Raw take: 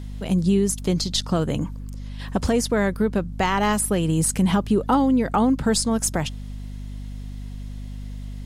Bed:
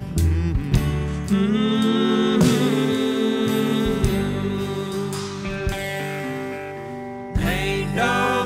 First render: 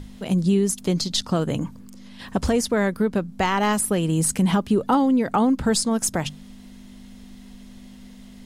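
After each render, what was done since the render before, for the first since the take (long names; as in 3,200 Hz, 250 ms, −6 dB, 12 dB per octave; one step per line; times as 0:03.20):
mains-hum notches 50/100/150 Hz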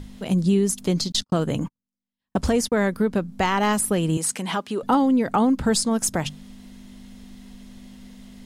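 0:01.12–0:02.81: noise gate −31 dBFS, range −48 dB
0:04.17–0:04.83: meter weighting curve A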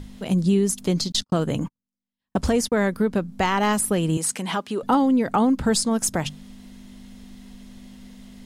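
no processing that can be heard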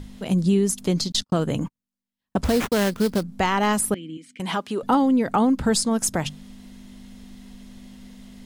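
0:02.44–0:03.23: sample-rate reduction 4,700 Hz, jitter 20%
0:03.94–0:04.40: formant filter i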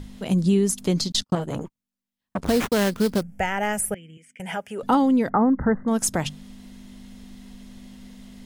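0:01.35–0:02.48: saturating transformer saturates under 790 Hz
0:03.21–0:04.79: phaser with its sweep stopped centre 1,100 Hz, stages 6
0:05.29–0:05.88: linear-phase brick-wall low-pass 2,100 Hz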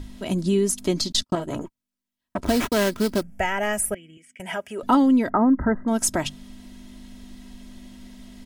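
comb filter 3.1 ms, depth 49%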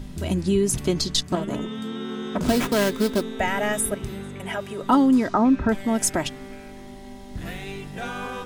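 mix in bed −12.5 dB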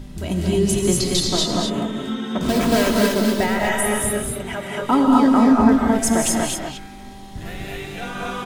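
single-tap delay 234 ms −4.5 dB
reverb whose tail is shaped and stops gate 280 ms rising, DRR −0.5 dB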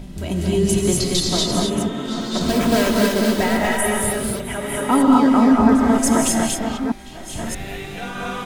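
delay that plays each chunk backwards 629 ms, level −8 dB
echo ahead of the sound 280 ms −21 dB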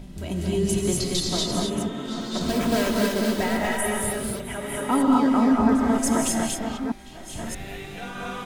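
level −5.5 dB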